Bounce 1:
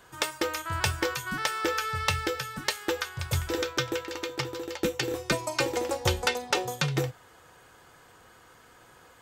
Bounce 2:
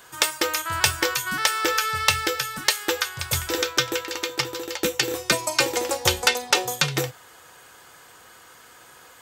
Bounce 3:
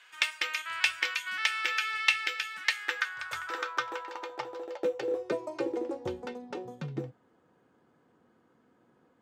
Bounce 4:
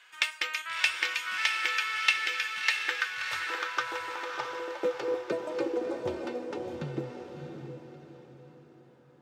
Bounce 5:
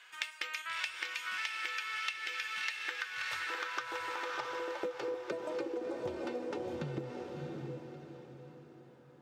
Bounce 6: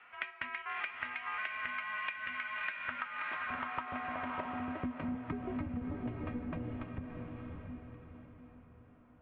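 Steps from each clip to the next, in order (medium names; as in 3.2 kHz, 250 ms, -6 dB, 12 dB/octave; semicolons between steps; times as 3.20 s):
tilt EQ +2 dB/octave; trim +5 dB
band-pass sweep 2.4 kHz -> 230 Hz, 2.49–6.37 s
echo that smears into a reverb 648 ms, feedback 40%, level -5 dB
compression 10:1, threshold -34 dBFS, peak gain reduction 16 dB
mistuned SSB -250 Hz 300–2900 Hz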